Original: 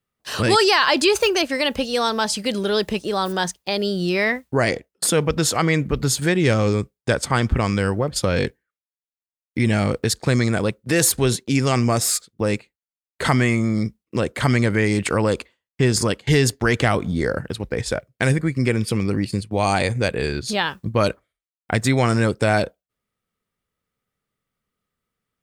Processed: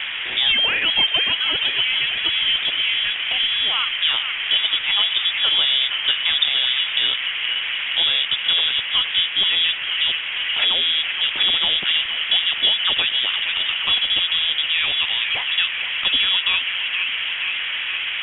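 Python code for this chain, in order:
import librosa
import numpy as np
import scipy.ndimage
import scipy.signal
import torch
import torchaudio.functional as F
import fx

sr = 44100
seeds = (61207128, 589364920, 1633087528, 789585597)

p1 = fx.speed_glide(x, sr, from_pct=105, to_pct=174)
p2 = fx.high_shelf(p1, sr, hz=2000.0, db=-12.0)
p3 = fx.dmg_noise_band(p2, sr, seeds[0], low_hz=150.0, high_hz=1800.0, level_db=-31.0)
p4 = p3 + fx.echo_wet_bandpass(p3, sr, ms=470, feedback_pct=71, hz=1000.0, wet_db=-4.5, dry=0)
p5 = fx.freq_invert(p4, sr, carrier_hz=3600)
y = fx.band_squash(p5, sr, depth_pct=40)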